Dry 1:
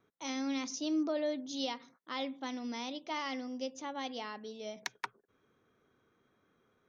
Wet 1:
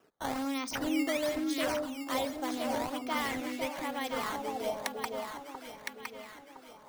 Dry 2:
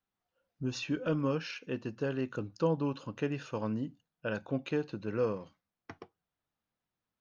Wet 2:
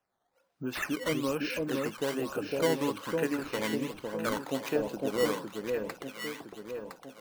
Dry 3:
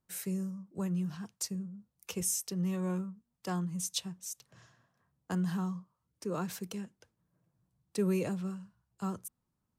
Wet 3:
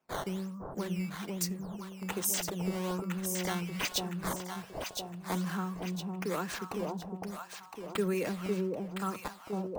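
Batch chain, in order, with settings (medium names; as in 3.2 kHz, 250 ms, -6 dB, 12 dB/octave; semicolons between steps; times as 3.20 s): high-pass 230 Hz 12 dB/octave; in parallel at +0.5 dB: compression, threshold -47 dBFS; on the sum: decimation with a swept rate 10×, swing 160% 1.2 Hz; echo whose repeats swap between lows and highs 506 ms, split 860 Hz, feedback 67%, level -2 dB; sweeping bell 0.41 Hz 640–2400 Hz +6 dB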